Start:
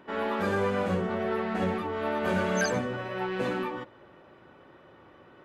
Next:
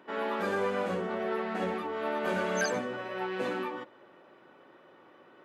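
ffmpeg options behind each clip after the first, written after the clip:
ffmpeg -i in.wav -af "highpass=230,volume=-2dB" out.wav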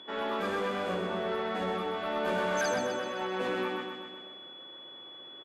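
ffmpeg -i in.wav -af "aeval=exprs='val(0)+0.00447*sin(2*PI*3400*n/s)':channel_layout=same,asoftclip=type=tanh:threshold=-25dB,aecho=1:1:128|256|384|512|640|768|896|1024:0.501|0.296|0.174|0.103|0.0607|0.0358|0.0211|0.0125" out.wav

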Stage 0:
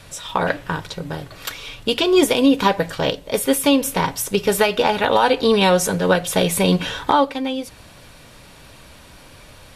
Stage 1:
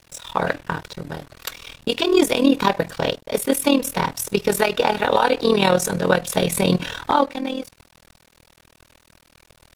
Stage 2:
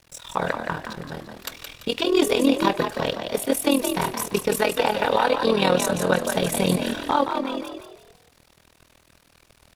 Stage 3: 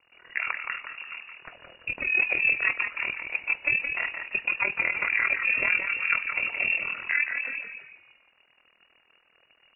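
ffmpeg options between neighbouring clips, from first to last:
ffmpeg -i in.wav -af "bandreject=frequency=3100:width=16,tremolo=f=40:d=0.788,aeval=exprs='sgn(val(0))*max(abs(val(0))-0.00562,0)':channel_layout=same,volume=2dB" out.wav
ffmpeg -i in.wav -filter_complex "[0:a]asplit=5[link_01][link_02][link_03][link_04][link_05];[link_02]adelay=170,afreqshift=53,volume=-6.5dB[link_06];[link_03]adelay=340,afreqshift=106,volume=-15.1dB[link_07];[link_04]adelay=510,afreqshift=159,volume=-23.8dB[link_08];[link_05]adelay=680,afreqshift=212,volume=-32.4dB[link_09];[link_01][link_06][link_07][link_08][link_09]amix=inputs=5:normalize=0,volume=-3.5dB" out.wav
ffmpeg -i in.wav -af "lowpass=frequency=2500:width_type=q:width=0.5098,lowpass=frequency=2500:width_type=q:width=0.6013,lowpass=frequency=2500:width_type=q:width=0.9,lowpass=frequency=2500:width_type=q:width=2.563,afreqshift=-2900,volume=-5dB" out.wav

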